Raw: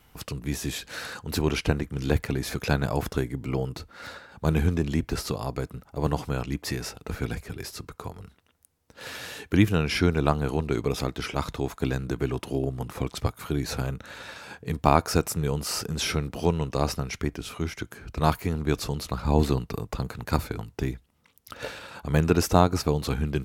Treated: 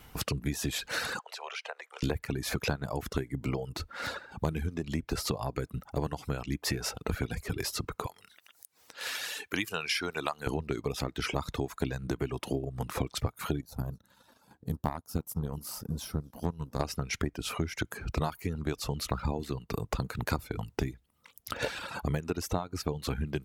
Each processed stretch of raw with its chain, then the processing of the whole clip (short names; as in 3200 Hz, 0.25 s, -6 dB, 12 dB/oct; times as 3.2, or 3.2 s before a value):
1.19–2.03 steep high-pass 540 Hz 48 dB/oct + compressor 3:1, threshold -43 dBFS + air absorption 69 m
8.06–10.47 HPF 1500 Hz 6 dB/oct + upward compressor, threshold -50 dBFS
13.61–16.8 EQ curve 250 Hz 0 dB, 360 Hz -10 dB, 980 Hz -4 dB, 2300 Hz -21 dB, 3200 Hz -11 dB, 8400 Hz -7 dB, 12000 Hz +3 dB + frequency-shifting echo 0.249 s, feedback 58%, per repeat +59 Hz, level -23 dB + power-law curve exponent 1.4
whole clip: compressor 12:1, threshold -32 dBFS; reverb removal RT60 0.79 s; gain +5.5 dB